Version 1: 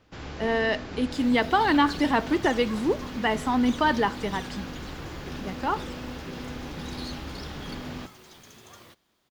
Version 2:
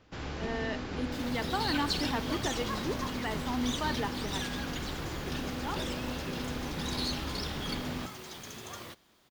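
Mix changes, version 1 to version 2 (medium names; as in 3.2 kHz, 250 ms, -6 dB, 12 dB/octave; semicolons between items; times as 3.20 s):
speech -11.5 dB; second sound +6.0 dB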